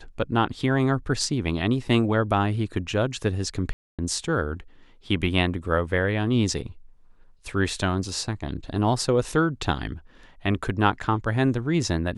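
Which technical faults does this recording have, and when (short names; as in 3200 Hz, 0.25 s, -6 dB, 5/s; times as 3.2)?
3.73–3.99 gap 0.256 s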